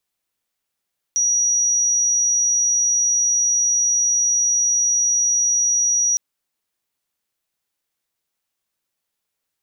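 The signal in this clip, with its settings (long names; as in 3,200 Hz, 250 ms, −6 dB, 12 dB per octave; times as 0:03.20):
tone sine 5,790 Hz −15 dBFS 5.01 s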